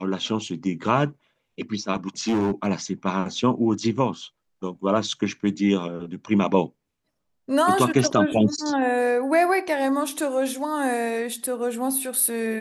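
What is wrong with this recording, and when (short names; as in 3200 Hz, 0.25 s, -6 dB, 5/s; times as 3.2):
2.19–2.67 clipped -18 dBFS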